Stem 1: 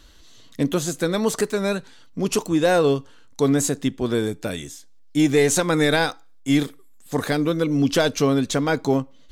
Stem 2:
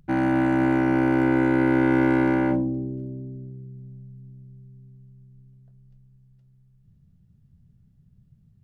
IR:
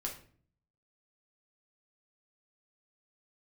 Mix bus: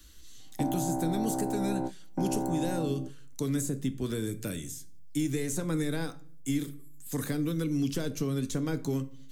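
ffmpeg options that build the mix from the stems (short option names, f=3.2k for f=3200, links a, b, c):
-filter_complex "[0:a]equalizer=f=740:w=0.89:g=-13,acrossover=split=140|1100[a][b][c];[a]acompressor=threshold=-36dB:ratio=4[d];[b]acompressor=threshold=-26dB:ratio=4[e];[c]acompressor=threshold=-40dB:ratio=4[f];[d][e][f]amix=inputs=3:normalize=0,volume=-5.5dB,asplit=3[g][h][i];[h]volume=-6.5dB[j];[1:a]lowpass=f=740:t=q:w=4.6,adelay=300,volume=-13dB[k];[i]apad=whole_len=393973[l];[k][l]sidechaingate=range=-40dB:threshold=-44dB:ratio=16:detection=peak[m];[2:a]atrim=start_sample=2205[n];[j][n]afir=irnorm=-1:irlink=0[o];[g][m][o]amix=inputs=3:normalize=0,highshelf=f=5.6k:g=10.5,acrossover=split=310|3000[p][q][r];[q]acompressor=threshold=-32dB:ratio=6[s];[p][s][r]amix=inputs=3:normalize=0,equalizer=f=4.1k:w=0.93:g=-5"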